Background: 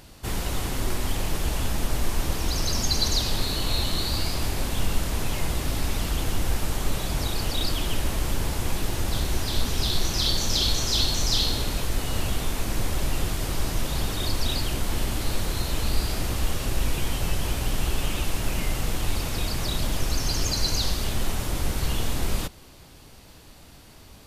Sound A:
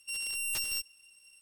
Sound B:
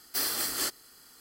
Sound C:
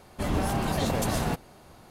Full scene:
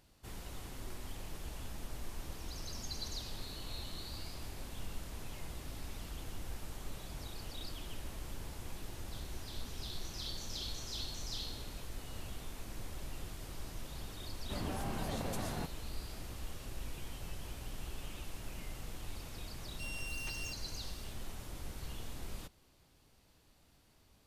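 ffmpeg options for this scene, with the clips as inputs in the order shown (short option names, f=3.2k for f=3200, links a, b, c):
-filter_complex "[0:a]volume=-18.5dB[a];[3:a]aresample=32000,aresample=44100[b];[1:a]acrossover=split=3600[c][d];[d]acompressor=threshold=-47dB:ratio=4:attack=1:release=60[e];[c][e]amix=inputs=2:normalize=0[f];[b]atrim=end=1.9,asetpts=PTS-STARTPTS,volume=-12.5dB,afade=t=in:d=0.004:c=hsin,afade=t=out:st=1.896:d=0.004:c=hsin,adelay=14310[g];[f]atrim=end=1.41,asetpts=PTS-STARTPTS,volume=-5dB,afade=t=in:d=0.004:c=hsin,afade=t=out:st=1.406:d=0.004:c=hsin,adelay=869652S[h];[a][g][h]amix=inputs=3:normalize=0"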